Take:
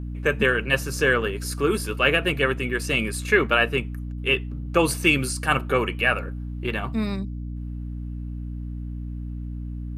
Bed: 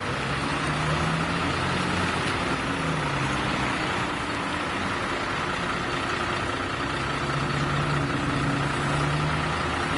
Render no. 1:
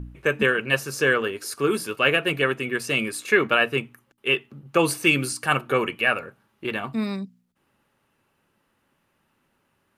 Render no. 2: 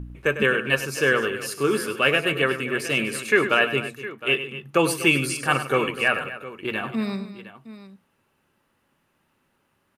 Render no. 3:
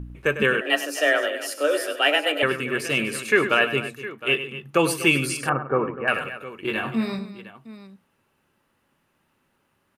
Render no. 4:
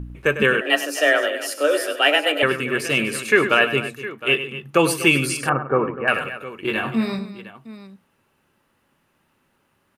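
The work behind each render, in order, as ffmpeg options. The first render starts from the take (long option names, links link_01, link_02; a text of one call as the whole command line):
ffmpeg -i in.wav -af "bandreject=frequency=60:width_type=h:width=4,bandreject=frequency=120:width_type=h:width=4,bandreject=frequency=180:width_type=h:width=4,bandreject=frequency=240:width_type=h:width=4,bandreject=frequency=300:width_type=h:width=4" out.wav
ffmpeg -i in.wav -af "aecho=1:1:100|247|711:0.266|0.178|0.168" out.wav
ffmpeg -i in.wav -filter_complex "[0:a]asettb=1/sr,asplit=3[link_01][link_02][link_03];[link_01]atrim=end=0.614[link_04];[link_02]atrim=start=0.61:end=2.43,asetpts=PTS-STARTPTS,afade=type=in:duration=0.004:curve=qsin,afade=type=out:start_time=1.816:duration=0.004:curve=qsin,afreqshift=150[link_05];[link_03]atrim=start=2.426[link_06];[link_04][link_05]acrossfade=duration=0.004:curve1=hsin:curve2=qsin[link_07];[link_07][link_06]acrossfade=duration=0.004:curve1=qsin:curve2=hsin,asettb=1/sr,asplit=3[link_08][link_09][link_10];[link_08]atrim=end=5.494[link_11];[link_09]atrim=start=5.49:end=6.08,asetpts=PTS-STARTPTS,afade=type=in:duration=0.004:curve=qsin,afade=type=out:start_time=0.586:duration=0.004:curve=qsin,lowpass=frequency=1400:width=0.5412,lowpass=frequency=1400:width=1.3066[link_12];[link_10]atrim=start=6.076[link_13];[link_11][link_12]acrossfade=duration=0.004:curve1=hsin:curve2=qsin[link_14];[link_14][link_13]acrossfade=duration=0.004:curve1=qsin:curve2=hsin,asettb=1/sr,asplit=3[link_15][link_16][link_17];[link_15]atrim=end=6.634[link_18];[link_16]atrim=start=6.63:end=7.19,asetpts=PTS-STARTPTS,afade=type=in:duration=0.004:curve=qsin,afade=type=out:start_time=0.556:duration=0.004:curve=qsin,asplit=2[link_19][link_20];[link_20]adelay=22,volume=-5dB[link_21];[link_19][link_21]amix=inputs=2:normalize=0,atrim=end_sample=24696[link_22];[link_17]atrim=start=7.186[link_23];[link_18][link_22]acrossfade=duration=0.004:curve1=hsin:curve2=qsin[link_24];[link_24][link_23]acrossfade=duration=0.004:curve1=qsin:curve2=hsin" out.wav
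ffmpeg -i in.wav -af "volume=3dB,alimiter=limit=-3dB:level=0:latency=1" out.wav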